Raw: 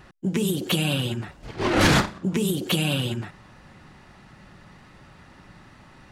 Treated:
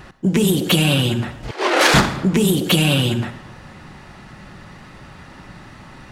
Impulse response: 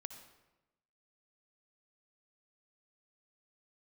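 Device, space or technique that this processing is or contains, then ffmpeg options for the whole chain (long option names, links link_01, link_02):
saturated reverb return: -filter_complex "[0:a]asplit=2[link_01][link_02];[1:a]atrim=start_sample=2205[link_03];[link_02][link_03]afir=irnorm=-1:irlink=0,asoftclip=type=tanh:threshold=-24dB,volume=4.5dB[link_04];[link_01][link_04]amix=inputs=2:normalize=0,asettb=1/sr,asplit=3[link_05][link_06][link_07];[link_05]atrim=end=1.514[link_08];[link_06]atrim=start=1.51:end=1.94,asetpts=PTS-STARTPTS,afade=type=in:duration=0.004:curve=qsin,afade=type=out:start_time=0.426:duration=0.004:curve=qsin,highpass=frequency=400:width=0.5412,highpass=frequency=400:width=1.3066[link_09];[link_07]atrim=start=1.936[link_10];[link_08][link_09]acrossfade=duration=0.004:curve1=hsin:curve2=qsin[link_11];[link_11][link_10]acrossfade=duration=0.004:curve1=qsin:curve2=hsin,volume=3dB"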